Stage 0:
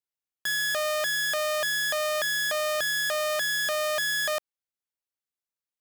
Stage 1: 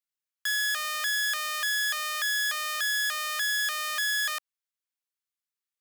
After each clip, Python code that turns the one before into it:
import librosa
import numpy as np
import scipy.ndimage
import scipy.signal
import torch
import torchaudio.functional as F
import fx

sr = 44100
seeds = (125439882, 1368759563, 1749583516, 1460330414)

y = scipy.signal.sosfilt(scipy.signal.butter(4, 1100.0, 'highpass', fs=sr, output='sos'), x)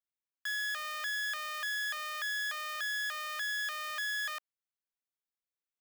y = fx.peak_eq(x, sr, hz=10000.0, db=-8.5, octaves=2.3)
y = y * 10.0 ** (-5.0 / 20.0)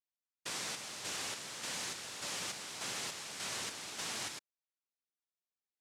y = fx.noise_vocoder(x, sr, seeds[0], bands=1)
y = y * 10.0 ** (-5.5 / 20.0)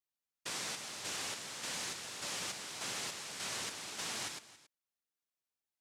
y = x + 10.0 ** (-18.0 / 20.0) * np.pad(x, (int(277 * sr / 1000.0), 0))[:len(x)]